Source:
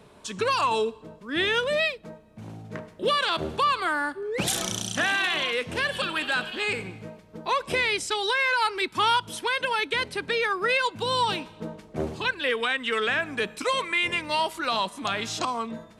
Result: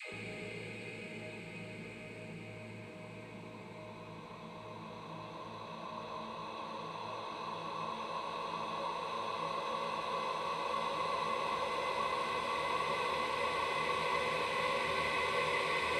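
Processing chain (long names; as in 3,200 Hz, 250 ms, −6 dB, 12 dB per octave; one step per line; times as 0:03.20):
pitch vibrato 7.6 Hz 6.1 cents
extreme stretch with random phases 23×, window 1.00 s, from 0:06.97
all-pass dispersion lows, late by 139 ms, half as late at 400 Hz
level −8 dB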